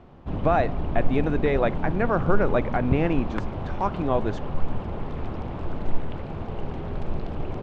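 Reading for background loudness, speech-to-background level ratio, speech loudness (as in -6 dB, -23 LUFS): -32.0 LUFS, 6.0 dB, -26.0 LUFS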